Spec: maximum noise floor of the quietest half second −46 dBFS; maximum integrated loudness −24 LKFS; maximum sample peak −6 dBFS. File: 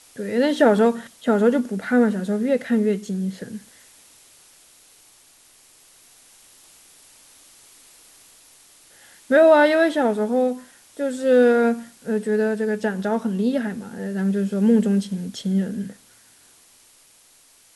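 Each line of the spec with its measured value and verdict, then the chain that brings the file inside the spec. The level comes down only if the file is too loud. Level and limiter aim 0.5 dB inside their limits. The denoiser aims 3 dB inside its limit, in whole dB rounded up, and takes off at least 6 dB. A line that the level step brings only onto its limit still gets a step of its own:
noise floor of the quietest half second −54 dBFS: in spec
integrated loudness −20.5 LKFS: out of spec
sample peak −4.5 dBFS: out of spec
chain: level −4 dB

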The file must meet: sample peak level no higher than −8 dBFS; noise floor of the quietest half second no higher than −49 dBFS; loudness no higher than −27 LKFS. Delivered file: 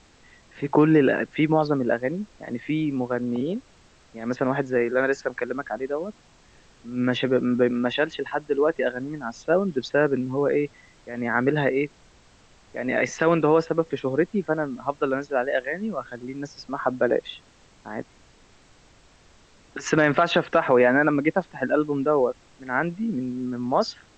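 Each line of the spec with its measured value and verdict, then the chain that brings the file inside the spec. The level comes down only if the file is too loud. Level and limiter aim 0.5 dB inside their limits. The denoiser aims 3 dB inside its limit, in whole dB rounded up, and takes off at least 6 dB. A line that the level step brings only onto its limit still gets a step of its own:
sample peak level −6.5 dBFS: out of spec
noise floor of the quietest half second −55 dBFS: in spec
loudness −24.0 LKFS: out of spec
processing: level −3.5 dB

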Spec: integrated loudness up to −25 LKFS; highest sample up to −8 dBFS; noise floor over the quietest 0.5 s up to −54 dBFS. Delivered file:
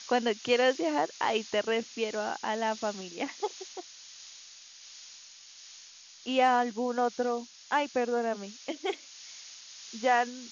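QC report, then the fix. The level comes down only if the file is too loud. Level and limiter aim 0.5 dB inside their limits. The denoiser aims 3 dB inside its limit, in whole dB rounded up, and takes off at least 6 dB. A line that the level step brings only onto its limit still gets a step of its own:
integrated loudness −30.0 LKFS: in spec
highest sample −13.0 dBFS: in spec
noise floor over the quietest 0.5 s −52 dBFS: out of spec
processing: broadband denoise 6 dB, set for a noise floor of −52 dBFS

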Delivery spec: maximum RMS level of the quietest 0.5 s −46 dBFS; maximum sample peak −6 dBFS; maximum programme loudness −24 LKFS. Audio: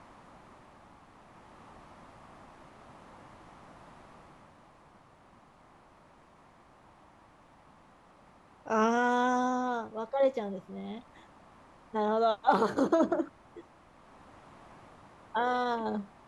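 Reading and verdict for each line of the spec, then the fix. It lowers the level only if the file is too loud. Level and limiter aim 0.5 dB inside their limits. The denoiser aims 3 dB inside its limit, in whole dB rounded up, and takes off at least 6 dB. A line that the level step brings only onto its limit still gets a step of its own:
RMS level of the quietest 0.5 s −59 dBFS: in spec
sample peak −11.5 dBFS: in spec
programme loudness −30.0 LKFS: in spec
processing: no processing needed

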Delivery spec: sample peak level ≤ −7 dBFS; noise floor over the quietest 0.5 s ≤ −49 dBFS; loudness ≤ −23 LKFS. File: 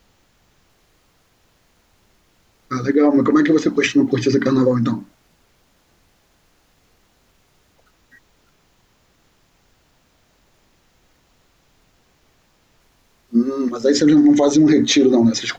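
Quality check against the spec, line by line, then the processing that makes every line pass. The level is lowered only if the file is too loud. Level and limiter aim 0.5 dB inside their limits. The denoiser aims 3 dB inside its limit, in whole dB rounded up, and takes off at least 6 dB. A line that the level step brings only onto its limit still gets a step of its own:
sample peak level −5.5 dBFS: out of spec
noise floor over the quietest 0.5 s −59 dBFS: in spec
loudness −16.0 LKFS: out of spec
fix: level −7.5 dB

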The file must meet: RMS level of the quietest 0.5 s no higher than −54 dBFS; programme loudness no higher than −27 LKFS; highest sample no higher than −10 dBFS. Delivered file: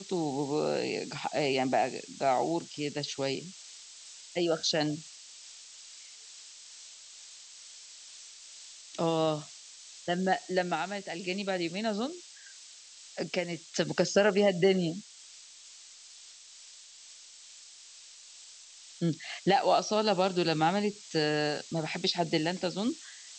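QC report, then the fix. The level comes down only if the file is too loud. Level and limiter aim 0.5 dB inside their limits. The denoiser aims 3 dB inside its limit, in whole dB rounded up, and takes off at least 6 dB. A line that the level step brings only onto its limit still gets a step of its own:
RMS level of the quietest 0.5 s −52 dBFS: out of spec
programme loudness −30.0 LKFS: in spec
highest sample −13.0 dBFS: in spec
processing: broadband denoise 6 dB, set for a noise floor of −52 dBFS

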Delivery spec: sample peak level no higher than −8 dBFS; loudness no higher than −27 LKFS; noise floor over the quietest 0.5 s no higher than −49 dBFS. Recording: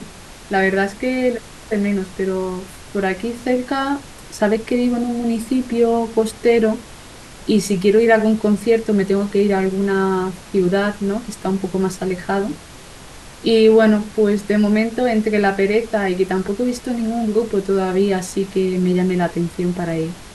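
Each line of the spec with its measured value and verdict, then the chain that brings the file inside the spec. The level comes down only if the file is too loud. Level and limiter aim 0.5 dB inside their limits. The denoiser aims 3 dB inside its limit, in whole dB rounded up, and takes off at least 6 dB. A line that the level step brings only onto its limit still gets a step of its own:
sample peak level −2.5 dBFS: out of spec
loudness −18.5 LKFS: out of spec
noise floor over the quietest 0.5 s −39 dBFS: out of spec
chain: broadband denoise 6 dB, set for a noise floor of −39 dBFS
level −9 dB

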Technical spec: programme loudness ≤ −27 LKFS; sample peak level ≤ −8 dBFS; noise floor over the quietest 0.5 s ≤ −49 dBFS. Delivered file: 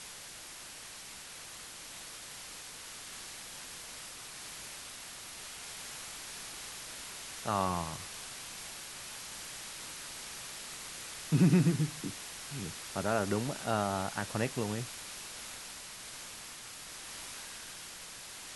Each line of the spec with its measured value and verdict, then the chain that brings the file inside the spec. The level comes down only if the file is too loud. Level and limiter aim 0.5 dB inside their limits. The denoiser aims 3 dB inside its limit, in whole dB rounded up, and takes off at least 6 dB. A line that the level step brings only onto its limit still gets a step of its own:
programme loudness −37.5 LKFS: in spec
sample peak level −15.5 dBFS: in spec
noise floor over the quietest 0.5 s −48 dBFS: out of spec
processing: broadband denoise 6 dB, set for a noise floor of −48 dBFS

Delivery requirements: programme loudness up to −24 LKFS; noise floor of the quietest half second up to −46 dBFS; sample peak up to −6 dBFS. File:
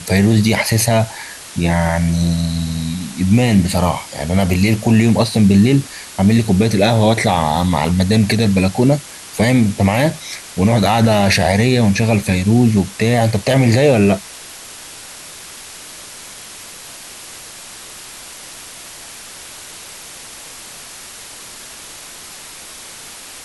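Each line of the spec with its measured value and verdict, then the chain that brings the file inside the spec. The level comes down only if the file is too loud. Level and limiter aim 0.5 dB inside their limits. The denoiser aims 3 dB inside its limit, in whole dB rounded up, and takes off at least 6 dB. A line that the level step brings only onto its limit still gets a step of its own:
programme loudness −15.0 LKFS: out of spec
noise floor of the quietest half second −35 dBFS: out of spec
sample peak −2.5 dBFS: out of spec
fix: broadband denoise 6 dB, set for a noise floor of −35 dBFS
level −9.5 dB

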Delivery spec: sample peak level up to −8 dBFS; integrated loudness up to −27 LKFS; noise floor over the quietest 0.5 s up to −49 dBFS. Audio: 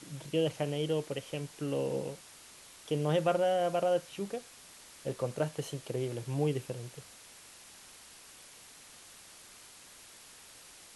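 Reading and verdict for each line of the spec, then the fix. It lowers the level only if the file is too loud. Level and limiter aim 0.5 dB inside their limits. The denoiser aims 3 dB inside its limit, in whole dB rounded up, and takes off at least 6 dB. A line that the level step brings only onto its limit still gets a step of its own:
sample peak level −17.0 dBFS: in spec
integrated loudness −33.5 LKFS: in spec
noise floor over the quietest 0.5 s −54 dBFS: in spec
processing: no processing needed

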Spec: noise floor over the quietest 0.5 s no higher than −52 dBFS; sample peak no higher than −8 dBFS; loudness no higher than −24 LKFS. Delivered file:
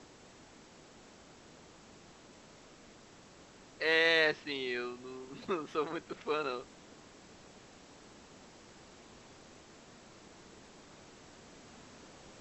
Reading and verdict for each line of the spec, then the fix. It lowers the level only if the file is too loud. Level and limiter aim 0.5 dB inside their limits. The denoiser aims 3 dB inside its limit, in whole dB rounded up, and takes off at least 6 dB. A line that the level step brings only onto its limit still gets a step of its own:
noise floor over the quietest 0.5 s −57 dBFS: in spec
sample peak −14.5 dBFS: in spec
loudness −33.0 LKFS: in spec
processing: no processing needed

